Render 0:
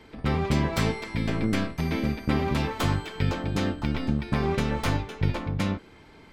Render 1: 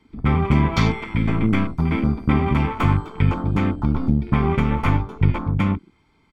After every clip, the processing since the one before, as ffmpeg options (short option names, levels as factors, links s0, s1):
-af "afwtdn=0.0158,aecho=1:1:0.9:0.49,volume=1.78"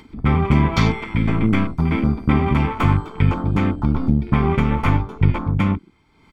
-af "acompressor=mode=upward:threshold=0.0112:ratio=2.5,volume=1.19"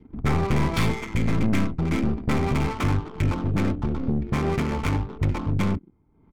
-af "adynamicsmooth=sensitivity=5:basefreq=530,aeval=exprs='(tanh(7.08*val(0)+0.45)-tanh(0.45))/7.08':c=same,adynamicequalizer=threshold=0.00794:dfrequency=980:dqfactor=1:tfrequency=980:tqfactor=1:attack=5:release=100:ratio=0.375:range=2:mode=cutabove:tftype=bell"